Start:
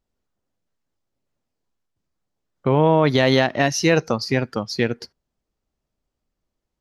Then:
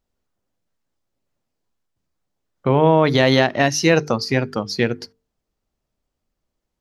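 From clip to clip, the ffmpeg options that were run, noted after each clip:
-af "bandreject=f=50:t=h:w=6,bandreject=f=100:t=h:w=6,bandreject=f=150:t=h:w=6,bandreject=f=200:t=h:w=6,bandreject=f=250:t=h:w=6,bandreject=f=300:t=h:w=6,bandreject=f=350:t=h:w=6,bandreject=f=400:t=h:w=6,bandreject=f=450:t=h:w=6,volume=2dB"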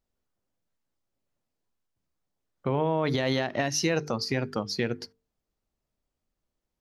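-af "alimiter=limit=-10dB:level=0:latency=1:release=95,volume=-5.5dB"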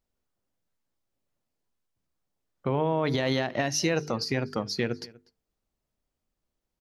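-filter_complex "[0:a]asplit=2[a][b];[b]adelay=244.9,volume=-22dB,highshelf=f=4k:g=-5.51[c];[a][c]amix=inputs=2:normalize=0"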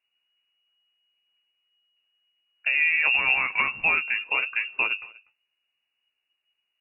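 -af "flanger=delay=8.3:depth=8:regen=26:speed=1.4:shape=sinusoidal,lowpass=f=2.5k:t=q:w=0.5098,lowpass=f=2.5k:t=q:w=0.6013,lowpass=f=2.5k:t=q:w=0.9,lowpass=f=2.5k:t=q:w=2.563,afreqshift=-2900,volume=7dB"

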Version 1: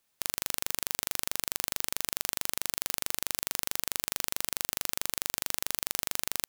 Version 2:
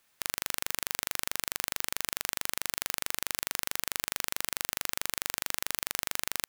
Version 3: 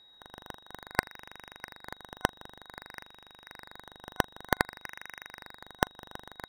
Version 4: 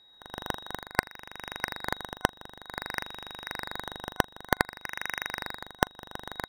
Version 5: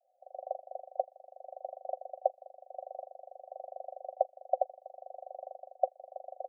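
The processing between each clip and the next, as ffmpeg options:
-af "equalizer=f=1.7k:t=o:w=1.6:g=5.5,alimiter=limit=-7dB:level=0:latency=1:release=195,volume=4.5dB"
-af "acrusher=samples=15:mix=1:aa=0.000001:lfo=1:lforange=9:lforate=0.54,aeval=exprs='val(0)+0.00251*sin(2*PI*3800*n/s)':c=same,superequalizer=9b=1.58:11b=2.24:15b=0.562,volume=-3.5dB"
-af "dynaudnorm=f=220:g=3:m=13dB,volume=-1dB"
-af "asuperpass=centerf=630:order=20:qfactor=2.4,volume=5dB"

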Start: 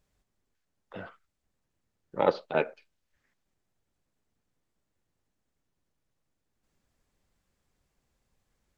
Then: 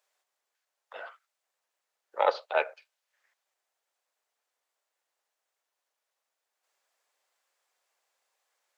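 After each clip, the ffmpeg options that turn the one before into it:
-af "highpass=f=580:w=0.5412,highpass=f=580:w=1.3066,volume=3dB"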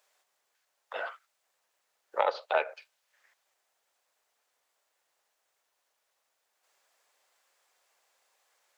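-af "acompressor=threshold=-30dB:ratio=6,volume=6.5dB"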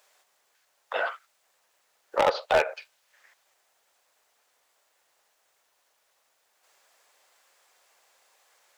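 -af "asoftclip=type=hard:threshold=-23.5dB,volume=8dB"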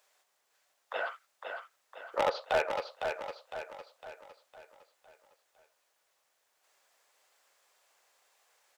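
-af "aecho=1:1:507|1014|1521|2028|2535|3042:0.501|0.236|0.111|0.052|0.0245|0.0115,volume=-6.5dB"

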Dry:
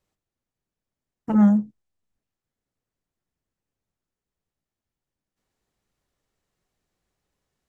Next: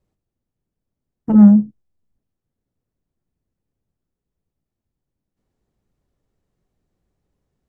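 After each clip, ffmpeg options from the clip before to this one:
-af "tiltshelf=f=700:g=7.5,volume=2dB"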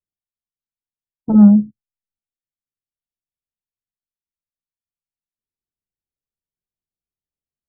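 -af "afftdn=nr=27:nf=-33"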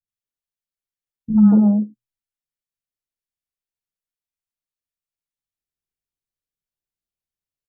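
-filter_complex "[0:a]bandreject=f=60:t=h:w=6,bandreject=f=120:t=h:w=6,acrossover=split=230|920[a][b][c];[c]adelay=80[d];[b]adelay=230[e];[a][e][d]amix=inputs=3:normalize=0"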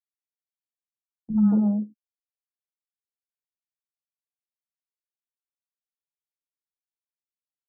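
-af "agate=range=-25dB:threshold=-31dB:ratio=16:detection=peak,volume=-7.5dB"

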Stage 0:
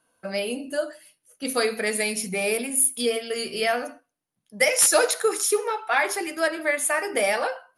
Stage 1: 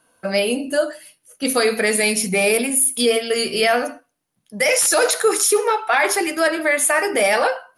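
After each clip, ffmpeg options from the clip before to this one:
-af "alimiter=limit=-16.5dB:level=0:latency=1:release=11,volume=8.5dB"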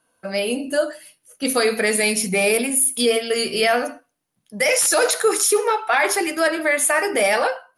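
-af "dynaudnorm=f=170:g=5:m=7.5dB,volume=-6.5dB"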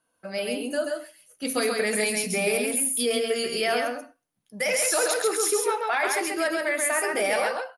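-af "aecho=1:1:135:0.668,volume=-7.5dB"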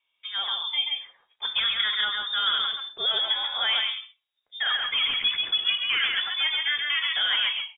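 -af "lowpass=f=3.2k:t=q:w=0.5098,lowpass=f=3.2k:t=q:w=0.6013,lowpass=f=3.2k:t=q:w=0.9,lowpass=f=3.2k:t=q:w=2.563,afreqshift=-3800"

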